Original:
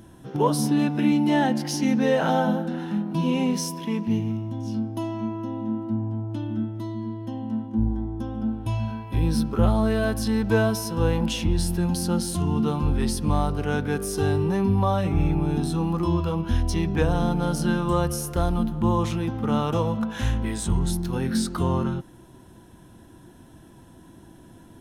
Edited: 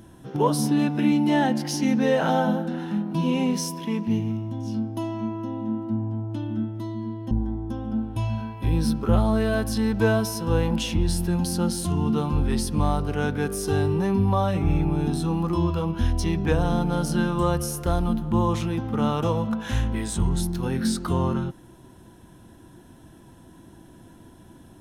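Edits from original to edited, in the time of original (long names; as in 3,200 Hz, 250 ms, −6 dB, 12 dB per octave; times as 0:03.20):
0:07.31–0:07.81: remove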